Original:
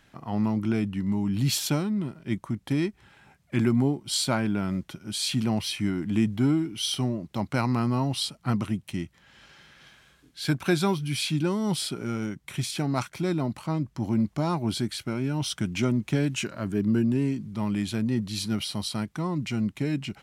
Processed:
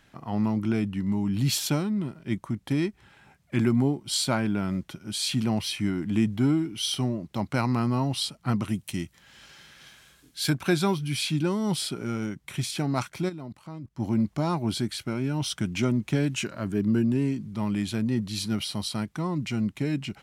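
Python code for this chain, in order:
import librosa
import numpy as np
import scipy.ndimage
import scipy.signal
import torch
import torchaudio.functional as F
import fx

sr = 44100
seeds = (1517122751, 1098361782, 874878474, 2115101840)

y = fx.high_shelf(x, sr, hz=4700.0, db=10.5, at=(8.68, 10.5))
y = fx.level_steps(y, sr, step_db=19, at=(13.28, 13.98), fade=0.02)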